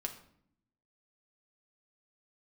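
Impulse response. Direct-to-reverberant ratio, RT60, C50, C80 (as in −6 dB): 3.0 dB, 0.65 s, 10.5 dB, 13.5 dB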